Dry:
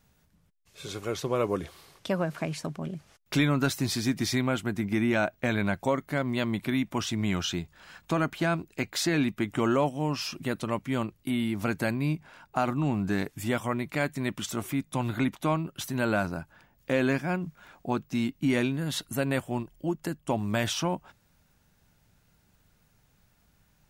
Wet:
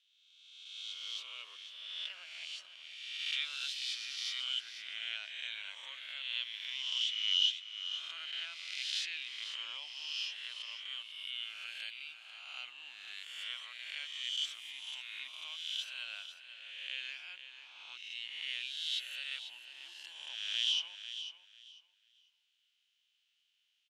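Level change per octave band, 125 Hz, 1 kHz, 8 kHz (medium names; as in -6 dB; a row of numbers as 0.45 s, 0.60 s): under -40 dB, -25.5 dB, -10.5 dB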